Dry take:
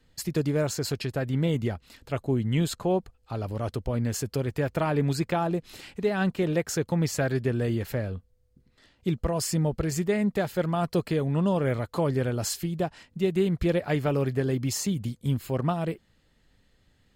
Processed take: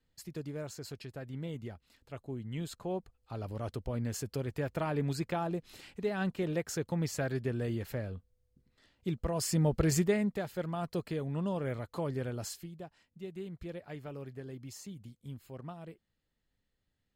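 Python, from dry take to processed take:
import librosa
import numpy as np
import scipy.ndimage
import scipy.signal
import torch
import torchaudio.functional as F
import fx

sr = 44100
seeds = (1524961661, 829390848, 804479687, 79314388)

y = fx.gain(x, sr, db=fx.line((2.42, -14.5), (3.44, -7.5), (9.19, -7.5), (9.93, 1.0), (10.4, -9.5), (12.4, -9.5), (12.8, -18.0)))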